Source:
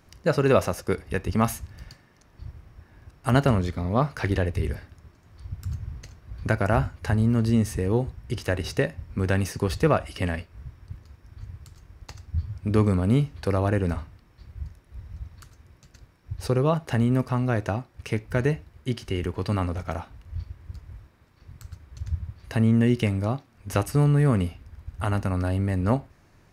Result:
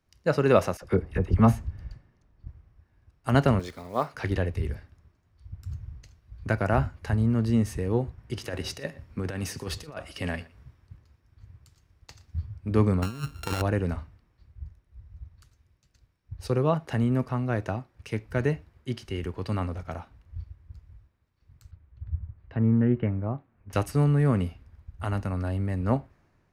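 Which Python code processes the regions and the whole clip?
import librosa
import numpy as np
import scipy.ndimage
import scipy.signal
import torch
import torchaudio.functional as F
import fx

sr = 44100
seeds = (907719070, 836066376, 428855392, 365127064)

y = fx.chain(x, sr, fx.tilt_eq(slope=-2.0),
    fx.dispersion(late='lows', ms=42.0, hz=1100.0), at=(0.77, 2.47))
y = fx.chain(y, sr, fx.block_float(bits=7),
    fx.bass_treble(bass_db=-13, treble_db=5), at=(3.59, 4.14))
y = fx.chain(y, sr, fx.low_shelf(hz=69.0, db=-10.0),
    fx.over_compress(threshold_db=-26.0, ratio=-0.5),
    fx.echo_single(ms=118, db=-19.5), at=(8.18, 12.46))
y = fx.chain(y, sr, fx.sample_sort(block=32),
    fx.peak_eq(hz=340.0, db=5.0, octaves=0.2),
    fx.over_compress(threshold_db=-25.0, ratio=-0.5), at=(13.02, 13.62))
y = fx.chain(y, sr, fx.env_lowpass_down(base_hz=2100.0, full_db=-20.5),
    fx.air_absorb(metres=380.0),
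    fx.doppler_dist(depth_ms=0.14), at=(21.71, 23.73))
y = fx.high_shelf(y, sr, hz=5600.0, db=-5.0)
y = fx.band_widen(y, sr, depth_pct=40)
y = F.gain(torch.from_numpy(y), -3.0).numpy()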